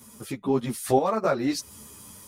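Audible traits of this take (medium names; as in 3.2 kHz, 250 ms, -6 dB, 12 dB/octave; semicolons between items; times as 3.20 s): random-step tremolo 4.1 Hz; a shimmering, thickened sound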